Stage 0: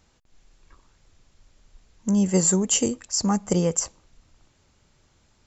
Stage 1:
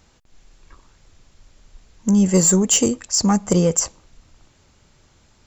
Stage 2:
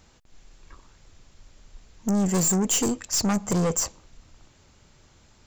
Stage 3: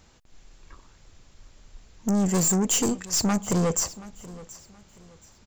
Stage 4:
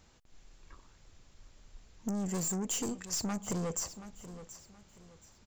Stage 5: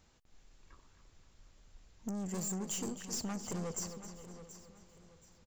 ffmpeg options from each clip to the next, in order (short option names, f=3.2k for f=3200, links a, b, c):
-af "asoftclip=type=tanh:threshold=-13dB,volume=6.5dB"
-af "aeval=exprs='(tanh(10*val(0)+0.3)-tanh(0.3))/10':c=same"
-af "aecho=1:1:726|1452|2178:0.112|0.0337|0.0101"
-af "acompressor=threshold=-26dB:ratio=5,volume=-6dB"
-filter_complex "[0:a]asplit=2[a][b];[b]adelay=264,lowpass=f=4.8k:p=1,volume=-9dB,asplit=2[c][d];[d]adelay=264,lowpass=f=4.8k:p=1,volume=0.51,asplit=2[e][f];[f]adelay=264,lowpass=f=4.8k:p=1,volume=0.51,asplit=2[g][h];[h]adelay=264,lowpass=f=4.8k:p=1,volume=0.51,asplit=2[i][j];[j]adelay=264,lowpass=f=4.8k:p=1,volume=0.51,asplit=2[k][l];[l]adelay=264,lowpass=f=4.8k:p=1,volume=0.51[m];[a][c][e][g][i][k][m]amix=inputs=7:normalize=0,volume=-4.5dB"